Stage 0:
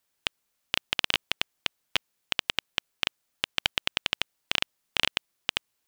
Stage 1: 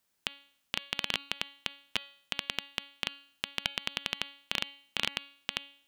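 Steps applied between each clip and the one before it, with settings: bell 210 Hz +5.5 dB 0.64 oct; de-hum 280.4 Hz, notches 16; limiter -9.5 dBFS, peak gain reduction 6 dB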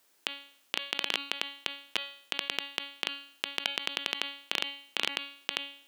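resonant low shelf 220 Hz -12 dB, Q 1.5; in parallel at -1 dB: negative-ratio compressor -40 dBFS, ratio -0.5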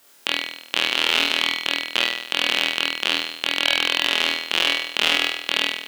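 flutter echo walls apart 4.2 m, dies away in 0.84 s; maximiser +12 dB; gain -1 dB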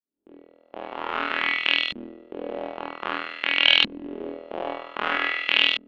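opening faded in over 1.32 s; thinning echo 0.121 s, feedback 65%, high-pass 1100 Hz, level -12 dB; LFO low-pass saw up 0.52 Hz 230–3600 Hz; gain -3 dB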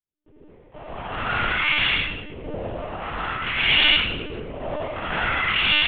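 reverb RT60 1.3 s, pre-delay 0.1 s, DRR -5.5 dB; monotone LPC vocoder at 8 kHz 300 Hz; gain -4 dB

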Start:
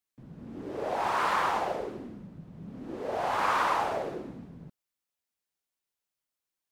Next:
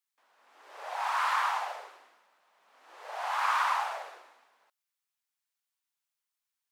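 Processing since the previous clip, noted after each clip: HPF 840 Hz 24 dB/oct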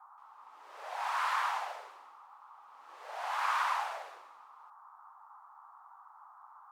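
band noise 800–1300 Hz -52 dBFS; gain -3.5 dB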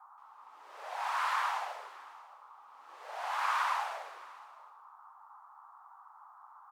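echo 0.622 s -21 dB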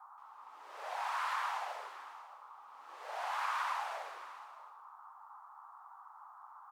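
compressor 2:1, threshold -38 dBFS, peak gain reduction 6 dB; gain +1 dB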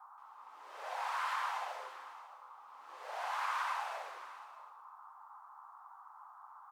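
resonator 520 Hz, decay 0.63 s, mix 70%; gain +9.5 dB

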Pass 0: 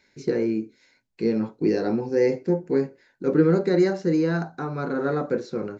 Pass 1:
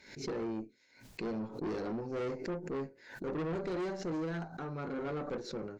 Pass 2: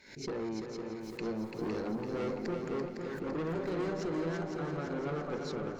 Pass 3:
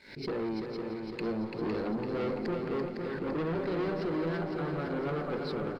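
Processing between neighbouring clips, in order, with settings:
tube stage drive 25 dB, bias 0.45; backwards sustainer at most 95 dB/s; gain -8 dB
multi-head echo 0.169 s, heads second and third, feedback 63%, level -6.5 dB
downsampling 11025 Hz; sample leveller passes 1

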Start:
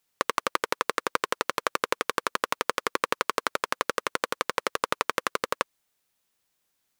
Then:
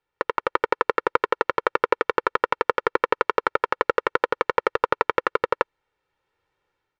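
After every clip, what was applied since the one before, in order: LPF 1900 Hz 12 dB/oct; comb 2.2 ms, depth 69%; AGC gain up to 7 dB; gain +1 dB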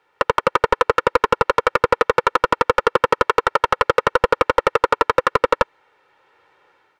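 overdrive pedal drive 30 dB, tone 1500 Hz, clips at -1 dBFS

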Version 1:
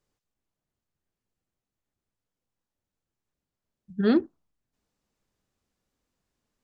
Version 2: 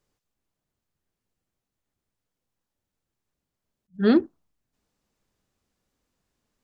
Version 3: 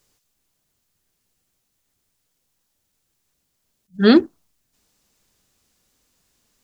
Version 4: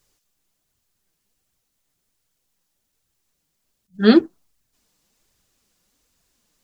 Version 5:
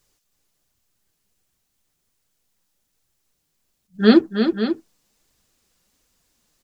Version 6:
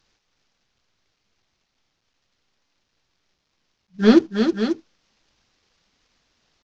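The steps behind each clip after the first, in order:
attack slew limiter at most 380 dB/s; gain +3 dB
high shelf 2600 Hz +11.5 dB; gain +6 dB
flange 1.3 Hz, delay 0.5 ms, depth 6.3 ms, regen +46%; gain +2.5 dB
tapped delay 0.319/0.54 s -7.5/-10 dB
CVSD 32 kbps

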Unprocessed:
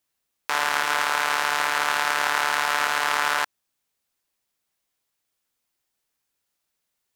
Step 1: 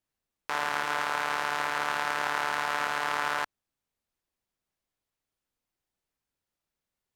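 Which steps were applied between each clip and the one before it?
tilt -2 dB/oct; gain -5.5 dB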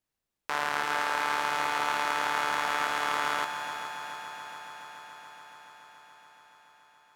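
multi-head echo 0.142 s, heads second and third, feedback 74%, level -10 dB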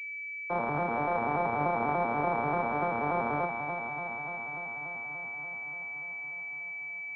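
arpeggiated vocoder major triad, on A#2, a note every 97 ms; air absorption 340 m; pulse-width modulation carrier 2300 Hz; gain +4 dB

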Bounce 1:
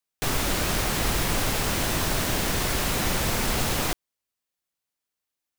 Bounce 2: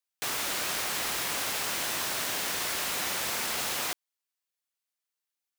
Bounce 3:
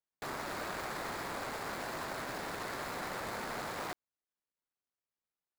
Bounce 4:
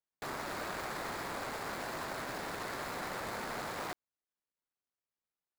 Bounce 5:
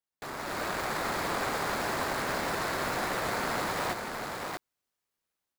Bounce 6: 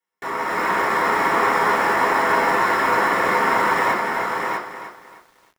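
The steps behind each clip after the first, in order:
HPF 1000 Hz 6 dB/oct; gain -2.5 dB
median filter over 15 samples; gain -1.5 dB
nothing audible
AGC gain up to 7 dB; echo 0.641 s -4 dB
reverb RT60 0.35 s, pre-delay 3 ms, DRR -5.5 dB; lo-fi delay 0.308 s, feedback 35%, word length 8-bit, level -10 dB

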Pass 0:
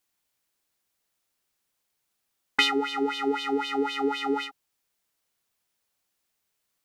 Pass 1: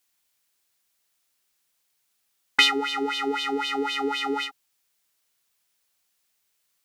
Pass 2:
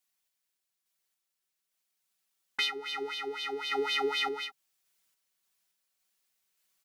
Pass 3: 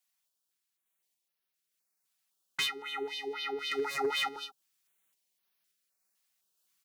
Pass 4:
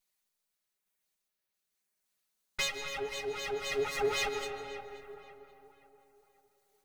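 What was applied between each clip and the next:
tilt shelf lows -4 dB, about 1200 Hz; gain +2 dB
comb 5.3 ms, depth 66%; vocal rider within 3 dB 2 s; random-step tremolo; gain -6.5 dB
one-sided fold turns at -24 dBFS; HPF 110 Hz; stepped notch 3.9 Hz 370–7700 Hz
minimum comb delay 4.8 ms; tape echo 0.531 s, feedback 43%, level -13 dB, low-pass 2500 Hz; digital reverb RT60 3.2 s, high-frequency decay 0.3×, pre-delay 0.105 s, DRR 7.5 dB

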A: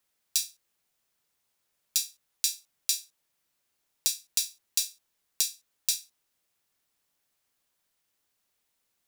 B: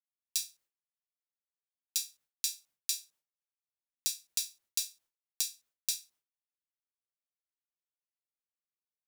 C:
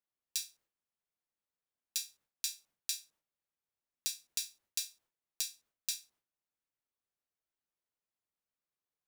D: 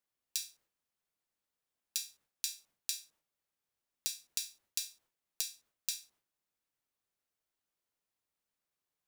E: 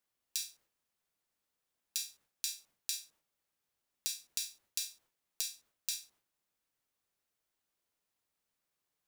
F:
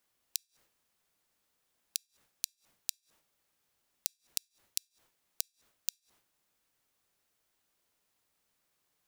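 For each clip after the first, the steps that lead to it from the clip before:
expander -54 dBFS; gain -5.5 dB
high shelf 2400 Hz -10 dB; gain +5 dB
compressor, threshold -35 dBFS, peak gain reduction 5.5 dB; gain +3.5 dB
limiter -14.5 dBFS, peak gain reduction 4.5 dB; gain +3 dB
flipped gate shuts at -29 dBFS, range -39 dB; gain +7.5 dB

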